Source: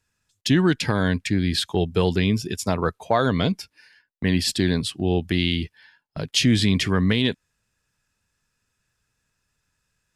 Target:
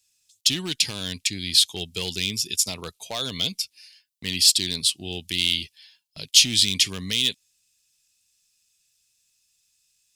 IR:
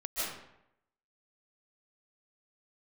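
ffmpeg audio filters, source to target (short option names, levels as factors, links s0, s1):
-af "volume=3.55,asoftclip=hard,volume=0.282,aexciter=amount=10:drive=6.7:freq=2400,volume=0.211"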